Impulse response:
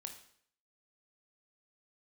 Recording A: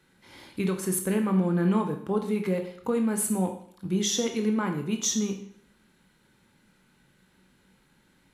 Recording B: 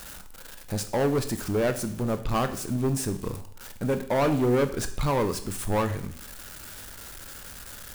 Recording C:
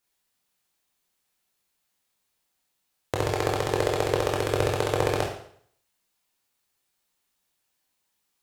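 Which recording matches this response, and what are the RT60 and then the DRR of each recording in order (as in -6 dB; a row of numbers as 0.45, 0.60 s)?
A; 0.60, 0.60, 0.60 s; 4.5, 8.5, -1.5 dB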